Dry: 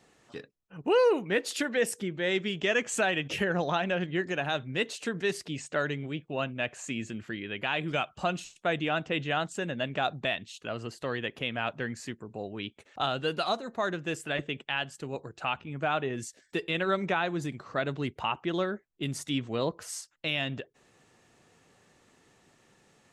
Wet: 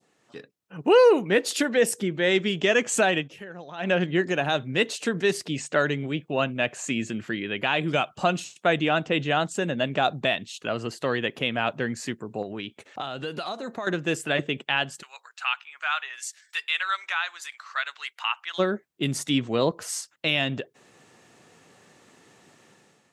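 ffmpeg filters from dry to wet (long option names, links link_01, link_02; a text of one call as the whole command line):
ffmpeg -i in.wav -filter_complex "[0:a]asettb=1/sr,asplit=3[link_01][link_02][link_03];[link_01]atrim=end=12.424[link_04];[link_02]atrim=start=12.42:end=13.87,asetpts=PTS-STARTPTS,afade=type=in:duration=0.004:curve=qsin,afade=type=out:start_time=1.446:duration=0.004:curve=qsin,acompressor=threshold=-36dB:ratio=6:attack=3.2:release=140:knee=1:detection=peak[link_05];[link_03]atrim=start=13.866[link_06];[link_04][link_05]acrossfade=duration=0.004:curve1=hsin:curve2=qsin[link_07];[link_07][link_06]acrossfade=duration=0.004:curve1=qsin:curve2=hsin,asplit=3[link_08][link_09][link_10];[link_08]afade=type=out:start_time=15.01:duration=0.02[link_11];[link_09]highpass=frequency=1200:width=0.5412,highpass=frequency=1200:width=1.3066,afade=type=in:start_time=15.01:duration=0.02,afade=type=out:start_time=18.58:duration=0.02[link_12];[link_10]afade=type=in:start_time=18.58:duration=0.02[link_13];[link_11][link_12][link_13]amix=inputs=3:normalize=0,asplit=3[link_14][link_15][link_16];[link_14]atrim=end=3.3,asetpts=PTS-STARTPTS,afade=type=out:start_time=3.17:duration=0.13:silence=0.112202[link_17];[link_15]atrim=start=3.3:end=3.77,asetpts=PTS-STARTPTS,volume=-19dB[link_18];[link_16]atrim=start=3.77,asetpts=PTS-STARTPTS,afade=type=in:duration=0.13:silence=0.112202[link_19];[link_17][link_18][link_19]concat=n=3:v=0:a=1,highpass=120,adynamicequalizer=threshold=0.00794:dfrequency=1900:dqfactor=0.74:tfrequency=1900:tqfactor=0.74:attack=5:release=100:ratio=0.375:range=2:mode=cutabove:tftype=bell,dynaudnorm=framelen=140:gausssize=7:maxgain=11.5dB,volume=-4dB" out.wav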